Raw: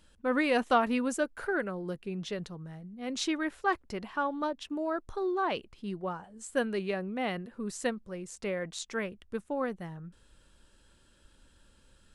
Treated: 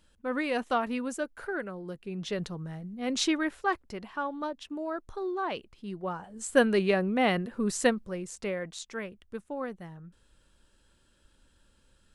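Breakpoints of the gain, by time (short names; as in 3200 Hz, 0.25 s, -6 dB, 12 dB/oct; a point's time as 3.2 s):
1.98 s -3 dB
2.43 s +5 dB
3.2 s +5 dB
3.92 s -2 dB
5.87 s -2 dB
6.5 s +7.5 dB
7.83 s +7.5 dB
8.89 s -3 dB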